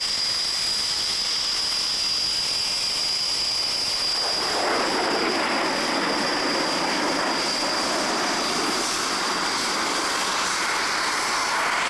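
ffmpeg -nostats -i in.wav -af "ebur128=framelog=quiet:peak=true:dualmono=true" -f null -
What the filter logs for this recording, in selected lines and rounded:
Integrated loudness:
  I:         -18.8 LUFS
  Threshold: -28.8 LUFS
Loudness range:
  LRA:         1.2 LU
  Threshold: -38.9 LUFS
  LRA low:   -19.4 LUFS
  LRA high:  -18.2 LUFS
True peak:
  Peak:      -13.9 dBFS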